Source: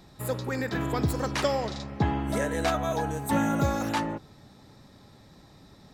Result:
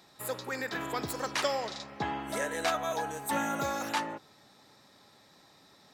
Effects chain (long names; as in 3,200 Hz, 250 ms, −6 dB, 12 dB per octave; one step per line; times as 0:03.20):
high-pass filter 790 Hz 6 dB per octave